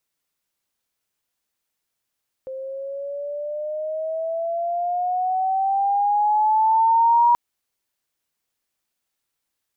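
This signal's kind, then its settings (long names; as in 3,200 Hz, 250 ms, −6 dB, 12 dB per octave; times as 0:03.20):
pitch glide with a swell sine, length 4.88 s, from 523 Hz, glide +10.5 semitones, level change +17 dB, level −12 dB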